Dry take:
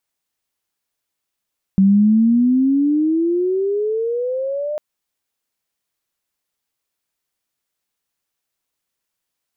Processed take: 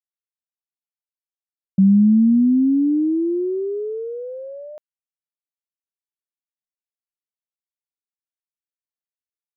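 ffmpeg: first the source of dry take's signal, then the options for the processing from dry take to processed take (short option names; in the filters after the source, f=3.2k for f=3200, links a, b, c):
-f lavfi -i "aevalsrc='pow(10,(-8.5-12*t/3)/20)*sin(2*PI*190*3/log(610/190)*(exp(log(610/190)*t/3)-1))':d=3:s=44100"
-af "agate=range=-33dB:threshold=-15dB:ratio=3:detection=peak"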